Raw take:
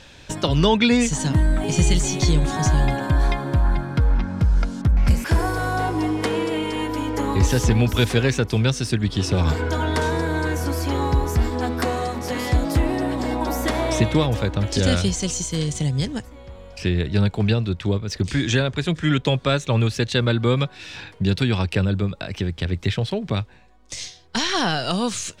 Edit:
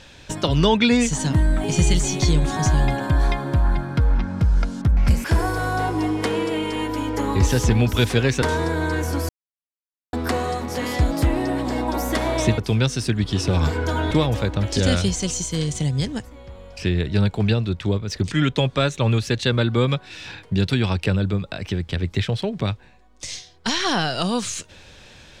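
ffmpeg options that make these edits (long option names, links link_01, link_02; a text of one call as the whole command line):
ffmpeg -i in.wav -filter_complex "[0:a]asplit=7[link_01][link_02][link_03][link_04][link_05][link_06][link_07];[link_01]atrim=end=8.422[link_08];[link_02]atrim=start=9.948:end=10.82,asetpts=PTS-STARTPTS,afade=type=out:start_time=0.868:duration=0.004:curve=hsin[link_09];[link_03]atrim=start=10.82:end=11.66,asetpts=PTS-STARTPTS,volume=0[link_10];[link_04]atrim=start=11.66:end=14.112,asetpts=PTS-STARTPTS,afade=type=in:duration=0.004:curve=hsin[link_11];[link_05]atrim=start=8.418:end=9.952[link_12];[link_06]atrim=start=14.108:end=18.322[link_13];[link_07]atrim=start=19.008[link_14];[link_09][link_10][link_11]concat=n=3:v=0:a=1[link_15];[link_08][link_15]acrossfade=duration=0.004:curve1=hsin:curve2=hsin[link_16];[link_16][link_12]acrossfade=duration=0.004:curve1=hsin:curve2=hsin[link_17];[link_17][link_13]acrossfade=duration=0.004:curve1=hsin:curve2=hsin[link_18];[link_18][link_14]acrossfade=duration=0.004:curve1=hsin:curve2=hsin" out.wav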